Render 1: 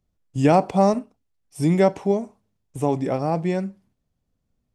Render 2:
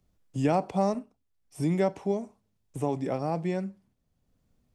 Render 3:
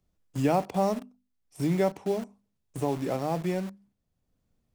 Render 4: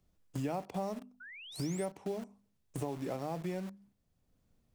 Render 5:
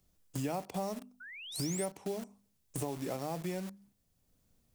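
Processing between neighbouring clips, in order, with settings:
three-band squash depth 40%; gain -7.5 dB
notches 50/100/150/200/250 Hz; in parallel at -4.5 dB: bit-crush 6-bit; on the sum: gain -3.5 dB
compressor 3:1, threshold -39 dBFS, peak gain reduction 14 dB; painted sound rise, 1.2–1.86, 1400–9900 Hz -51 dBFS; gain +1.5 dB
high shelf 4500 Hz +10.5 dB

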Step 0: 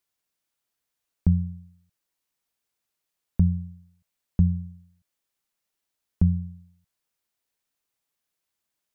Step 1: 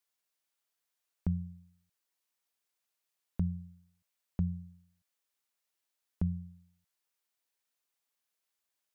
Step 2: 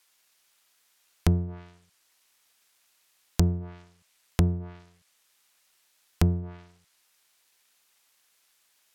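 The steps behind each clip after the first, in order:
low shelf 270 Hz -11.5 dB; gain -2.5 dB
half-waves squared off; treble ducked by the level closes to 320 Hz, closed at -29.5 dBFS; mismatched tape noise reduction encoder only; gain +7 dB

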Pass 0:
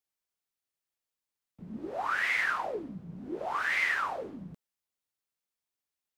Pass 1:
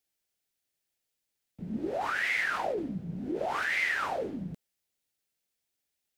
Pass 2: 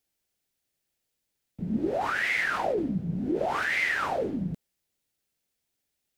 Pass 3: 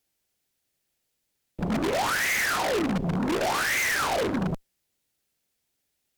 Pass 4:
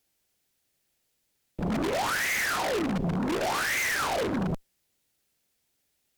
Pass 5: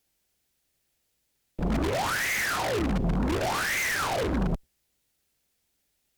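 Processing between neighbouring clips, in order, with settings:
bell 1100 Hz -9.5 dB 0.63 oct; in parallel at -2.5 dB: negative-ratio compressor -37 dBFS, ratio -0.5
low shelf 450 Hz +5.5 dB; gain +2 dB
wavefolder -24.5 dBFS; added harmonics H 6 -10 dB, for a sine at -24.5 dBFS; gain +3.5 dB
limiter -24 dBFS, peak gain reduction 5.5 dB; gain +2.5 dB
octaver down 2 oct, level 0 dB

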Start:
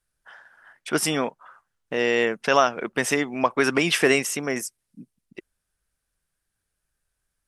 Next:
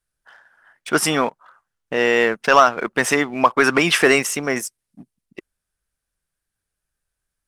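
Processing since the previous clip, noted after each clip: dynamic EQ 1200 Hz, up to +6 dB, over -35 dBFS, Q 1.1; sample leveller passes 1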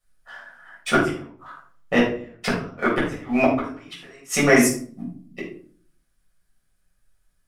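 flipped gate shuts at -7 dBFS, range -39 dB; shoebox room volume 460 m³, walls furnished, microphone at 6.3 m; gain -2 dB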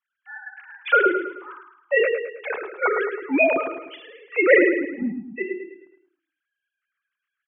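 sine-wave speech; feedback echo 0.107 s, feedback 44%, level -8.5 dB

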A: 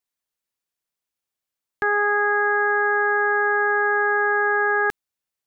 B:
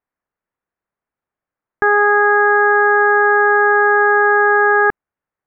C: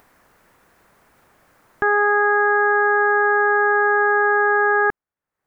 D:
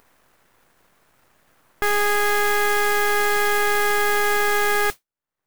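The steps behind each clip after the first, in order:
LPF 1800 Hz 24 dB/oct; gain +8.5 dB
upward compressor, threshold -25 dBFS; gain -4.5 dB
half-wave rectifier; modulation noise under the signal 11 dB

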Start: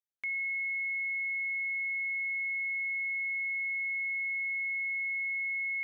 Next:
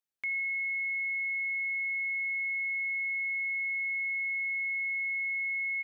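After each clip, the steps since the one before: feedback echo 82 ms, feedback 35%, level -14.5 dB; gain +1.5 dB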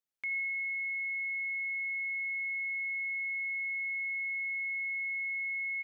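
plate-style reverb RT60 2 s, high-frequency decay 0.9×, DRR 14.5 dB; gain -2.5 dB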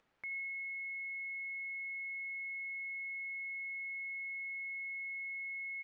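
LPF 1900 Hz 12 dB/oct; upward compressor, threshold -54 dBFS; gain -2.5 dB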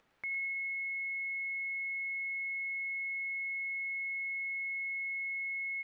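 thin delay 0.108 s, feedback 48%, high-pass 1900 Hz, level -5.5 dB; gain +4.5 dB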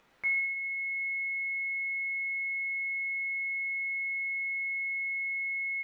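vocal rider; two-slope reverb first 0.59 s, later 2.8 s, from -21 dB, DRR -2 dB; gain +2 dB

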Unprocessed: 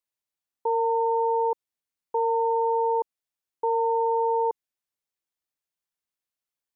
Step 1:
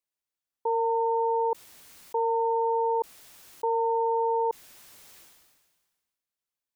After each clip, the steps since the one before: sustainer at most 38 dB/s; gain -2 dB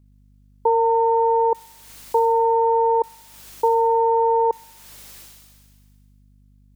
hum 50 Hz, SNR 32 dB; transient shaper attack +3 dB, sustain -6 dB; thin delay 64 ms, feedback 64%, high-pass 2900 Hz, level -4 dB; gain +7.5 dB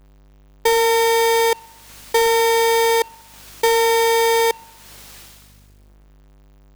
half-waves squared off; gain -1.5 dB

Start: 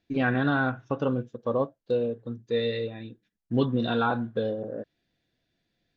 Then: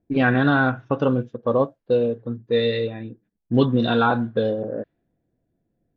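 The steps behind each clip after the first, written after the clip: low-pass opened by the level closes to 600 Hz, open at -23 dBFS; gain +6.5 dB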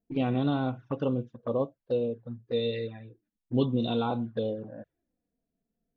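envelope flanger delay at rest 4.5 ms, full sweep at -17.5 dBFS; gain -7.5 dB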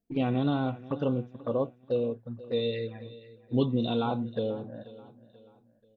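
feedback echo 0.485 s, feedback 40%, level -18 dB

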